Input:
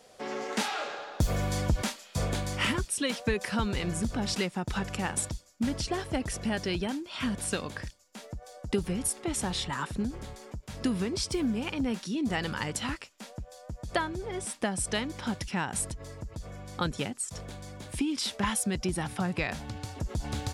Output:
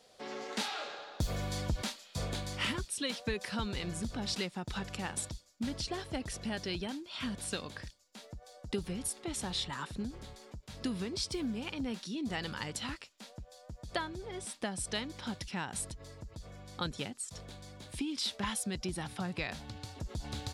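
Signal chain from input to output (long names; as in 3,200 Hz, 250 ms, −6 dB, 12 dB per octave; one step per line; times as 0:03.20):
parametric band 4,000 Hz +6.5 dB 0.75 octaves
level −7 dB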